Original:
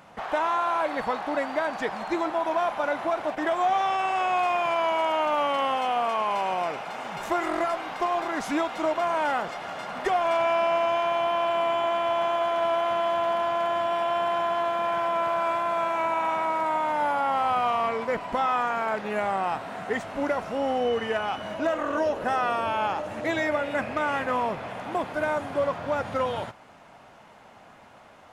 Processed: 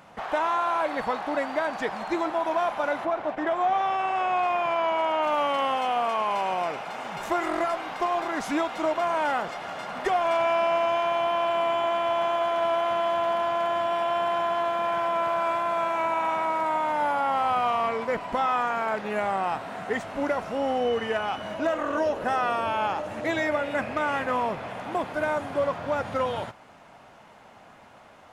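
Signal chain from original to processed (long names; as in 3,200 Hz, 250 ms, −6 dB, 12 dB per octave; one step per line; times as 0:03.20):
0:03.04–0:05.22: low-pass filter 2,000 Hz → 3,800 Hz 6 dB per octave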